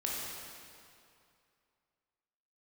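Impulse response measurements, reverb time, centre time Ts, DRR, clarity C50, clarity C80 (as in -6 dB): 2.5 s, 0.139 s, -4.5 dB, -2.0 dB, 0.0 dB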